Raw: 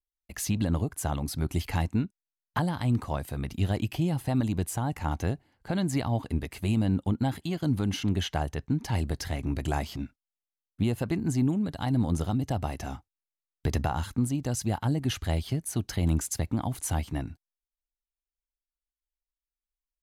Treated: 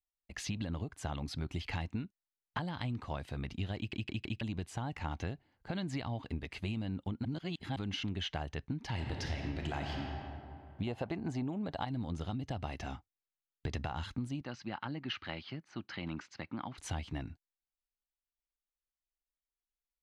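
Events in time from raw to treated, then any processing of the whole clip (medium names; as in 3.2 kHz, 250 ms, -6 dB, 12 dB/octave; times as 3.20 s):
3.77 s: stutter in place 0.16 s, 4 plays
7.25–7.76 s: reverse
8.86–9.97 s: reverb throw, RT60 2.7 s, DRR 2 dB
10.87–11.85 s: peaking EQ 700 Hz +11.5 dB 1.6 oct
14.41–16.78 s: cabinet simulation 240–4400 Hz, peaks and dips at 270 Hz -3 dB, 440 Hz -9 dB, 680 Hz -7 dB, 1.3 kHz +4 dB, 3.5 kHz -7 dB
whole clip: low-pass 4.9 kHz 12 dB/octave; dynamic bell 3 kHz, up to +7 dB, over -51 dBFS, Q 0.73; compression, threshold -28 dBFS; trim -5.5 dB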